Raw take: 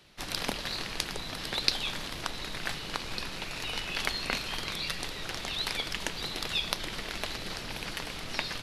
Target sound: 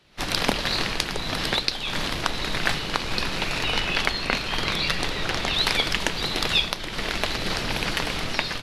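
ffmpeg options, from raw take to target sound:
-af "asetnsamples=n=441:p=0,asendcmd='3.59 highshelf g -12;5.56 highshelf g -6.5',highshelf=f=6.4k:g=-7,dynaudnorm=f=110:g=3:m=13dB,volume=-1dB"

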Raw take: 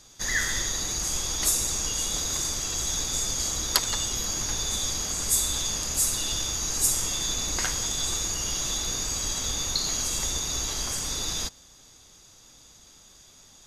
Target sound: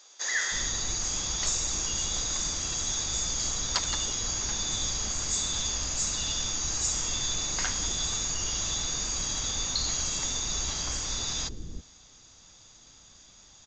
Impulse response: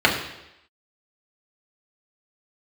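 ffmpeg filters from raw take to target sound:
-filter_complex "[0:a]acrossover=split=400[a][b];[a]adelay=320[c];[c][b]amix=inputs=2:normalize=0,aresample=16000,asoftclip=type=tanh:threshold=-16.5dB,aresample=44100,volume=-1dB"

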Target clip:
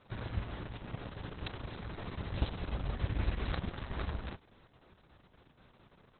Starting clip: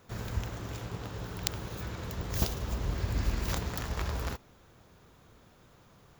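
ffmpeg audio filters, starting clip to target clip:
-af "volume=-2dB" -ar 48000 -c:a libopus -b:a 6k

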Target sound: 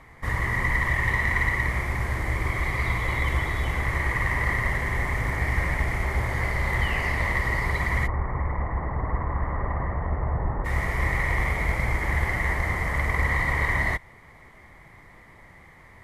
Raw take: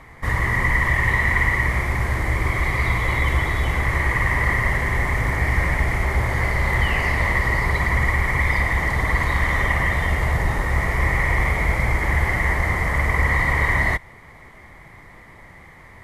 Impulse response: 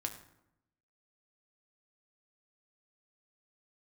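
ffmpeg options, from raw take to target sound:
-filter_complex "[0:a]asplit=3[a][b][c];[a]afade=t=out:st=8.06:d=0.02[d];[b]lowpass=f=1.3k:w=0.5412,lowpass=f=1.3k:w=1.3066,afade=t=in:st=8.06:d=0.02,afade=t=out:st=10.64:d=0.02[e];[c]afade=t=in:st=10.64:d=0.02[f];[d][e][f]amix=inputs=3:normalize=0,aeval=exprs='0.501*(cos(1*acos(clip(val(0)/0.501,-1,1)))-cos(1*PI/2))+0.0316*(cos(3*acos(clip(val(0)/0.501,-1,1)))-cos(3*PI/2))':c=same,volume=-3.5dB"

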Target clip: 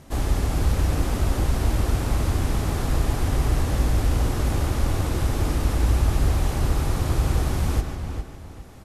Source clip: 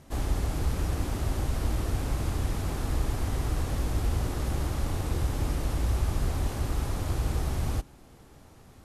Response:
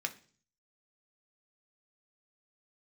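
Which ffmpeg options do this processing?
-filter_complex "[0:a]asplit=2[a][b];[b]adelay=407,lowpass=f=4k:p=1,volume=-7dB,asplit=2[c][d];[d]adelay=407,lowpass=f=4k:p=1,volume=0.29,asplit=2[e][f];[f]adelay=407,lowpass=f=4k:p=1,volume=0.29,asplit=2[g][h];[h]adelay=407,lowpass=f=4k:p=1,volume=0.29[i];[a][c][e][g][i]amix=inputs=5:normalize=0,asplit=2[j][k];[1:a]atrim=start_sample=2205,adelay=143[l];[k][l]afir=irnorm=-1:irlink=0,volume=-11dB[m];[j][m]amix=inputs=2:normalize=0,volume=5.5dB"

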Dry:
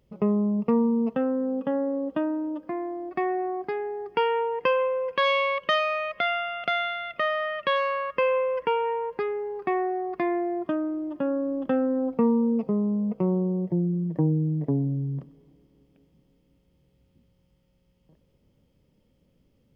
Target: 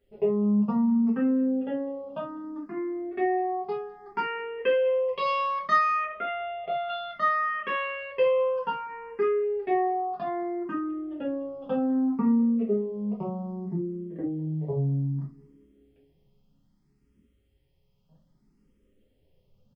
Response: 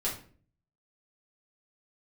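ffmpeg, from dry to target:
-filter_complex "[0:a]asettb=1/sr,asplit=3[a][b][c];[a]atrim=end=6.044[d];[b]atrim=start=6.04:end=6.89,asetpts=PTS-STARTPTS,afade=t=in:d=0.004:c=qsin,afade=t=out:st=0.846:d=0.004:c=qsin,lowpass=1.4k[e];[c]atrim=start=6.886[f];[d][e]acrossfade=d=0.004:c1=hsin:c2=qsin[g];[g][f]acrossfade=d=0.004:c1=qsin:c2=hsin,aecho=1:1:199:0.0794[h];[1:a]atrim=start_sample=2205,atrim=end_sample=3969[i];[h][i]afir=irnorm=-1:irlink=0,asplit=2[j][k];[k]afreqshift=0.63[l];[j][l]amix=inputs=2:normalize=1,volume=-5dB"

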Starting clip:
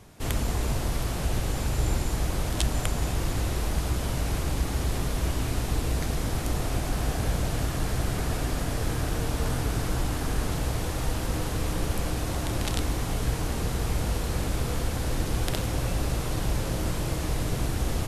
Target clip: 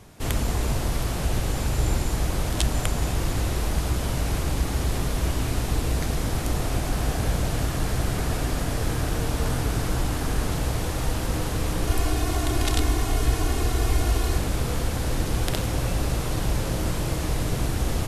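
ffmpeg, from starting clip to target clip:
-filter_complex "[0:a]asettb=1/sr,asplit=3[a][b][c];[a]atrim=end=11.874[d];[b]atrim=start=11.87:end=14.38,asetpts=PTS-STARTPTS,afade=t=in:d=0.004:c=qsin,afade=t=out:st=2.506:d=0.004:c=qsin,aecho=1:1:2.8:0.72,atrim=end_sample=110691[e];[c]atrim=start=14.376[f];[d][e]acrossfade=d=0.004:c1=hsin:c2=qsin[g];[g][f]acrossfade=d=0.004:c1=qsin:c2=hsin,volume=2.5dB"

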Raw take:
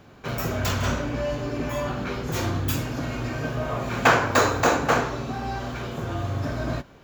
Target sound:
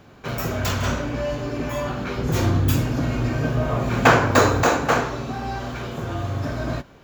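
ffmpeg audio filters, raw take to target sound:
-filter_complex "[0:a]asettb=1/sr,asplit=3[a][b][c];[a]atrim=end=2.184[d];[b]atrim=start=2.18:end=4.63,asetpts=PTS-STARTPTS,afade=t=in:d=0.004:c=qsin,afade=t=out:st=2.446:d=0.004:c=qsin,lowshelf=f=430:g=6.5[e];[c]atrim=start=4.626[f];[d][e]acrossfade=d=0.004:c1=hsin:c2=qsin[g];[g][f]acrossfade=d=0.004:c1=qsin:c2=hsin,volume=1.5dB"

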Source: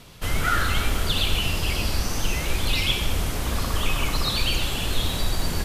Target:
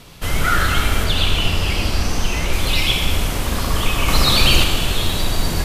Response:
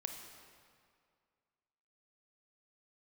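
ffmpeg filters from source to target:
-filter_complex "[0:a]asettb=1/sr,asplit=3[a][b][c];[a]atrim=end=1.044[d];[b]atrim=start=1.04:end=2.53,asetpts=PTS-STARTPTS,afade=t=in:d=0.004:c=qsin,afade=t=out:st=1.486:d=0.004:c=qsin,highshelf=f=9.2k:g=-9[e];[c]atrim=start=2.526[f];[d][e]acrossfade=d=0.004:c1=hsin:c2=qsin[g];[g][f]acrossfade=d=0.004:c1=qsin:c2=hsin,asettb=1/sr,asplit=3[h][i][j];[h]atrim=end=4.084[k];[i]atrim=start=4.08:end=4.64,asetpts=PTS-STARTPTS,afade=t=in:d=0.004:c=qsin,afade=t=out:st=0.556:d=0.004:c=qsin,acontrast=26[l];[j]atrim=start=4.636[m];[k][l]acrossfade=d=0.004:c1=hsin:c2=qsin[n];[n][m]acrossfade=d=0.004:c1=qsin:c2=hsin[o];[1:a]atrim=start_sample=2205[p];[o][p]afir=irnorm=-1:irlink=0,volume=7dB"

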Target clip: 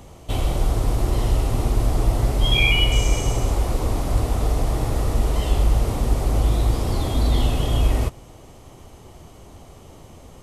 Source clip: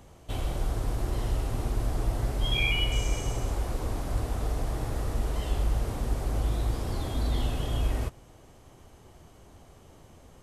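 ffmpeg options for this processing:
-af "equalizer=f=1.6k:t=o:w=0.3:g=-6.5,volume=9dB"

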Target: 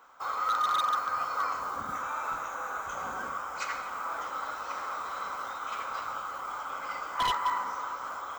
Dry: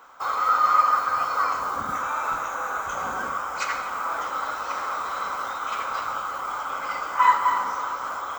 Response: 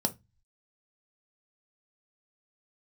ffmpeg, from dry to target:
-af "aeval=exprs='0.188*(abs(mod(val(0)/0.188+3,4)-2)-1)':c=same,volume=-7dB"

